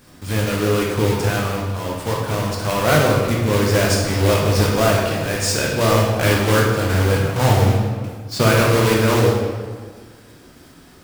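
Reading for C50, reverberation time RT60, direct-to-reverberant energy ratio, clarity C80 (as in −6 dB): 1.0 dB, 1.6 s, −3.0 dB, 3.5 dB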